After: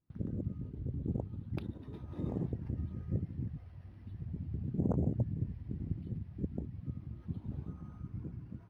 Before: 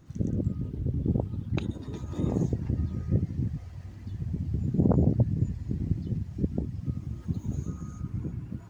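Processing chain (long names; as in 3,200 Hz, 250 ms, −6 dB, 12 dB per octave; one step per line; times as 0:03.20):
noise gate with hold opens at −36 dBFS
linearly interpolated sample-rate reduction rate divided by 6×
level −9 dB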